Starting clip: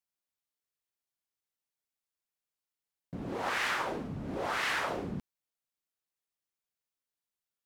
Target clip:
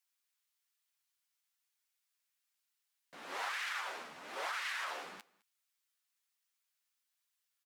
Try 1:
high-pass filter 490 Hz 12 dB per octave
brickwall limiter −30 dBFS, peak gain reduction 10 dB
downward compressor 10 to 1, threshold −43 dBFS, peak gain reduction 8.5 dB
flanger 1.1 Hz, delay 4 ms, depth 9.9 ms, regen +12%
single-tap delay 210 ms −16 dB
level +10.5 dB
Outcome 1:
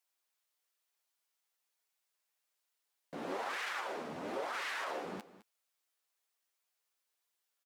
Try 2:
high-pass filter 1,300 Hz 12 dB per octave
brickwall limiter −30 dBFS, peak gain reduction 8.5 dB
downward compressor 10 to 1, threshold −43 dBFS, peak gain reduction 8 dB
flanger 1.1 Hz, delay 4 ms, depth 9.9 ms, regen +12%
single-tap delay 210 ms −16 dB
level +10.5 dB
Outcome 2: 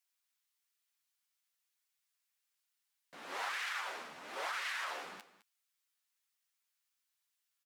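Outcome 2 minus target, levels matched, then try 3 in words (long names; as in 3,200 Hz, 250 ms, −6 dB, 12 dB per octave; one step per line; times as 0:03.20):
echo-to-direct +8.5 dB
high-pass filter 1,300 Hz 12 dB per octave
brickwall limiter −30 dBFS, peak gain reduction 8.5 dB
downward compressor 10 to 1, threshold −43 dBFS, peak gain reduction 8 dB
flanger 1.1 Hz, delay 4 ms, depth 9.9 ms, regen +12%
single-tap delay 210 ms −24.5 dB
level +10.5 dB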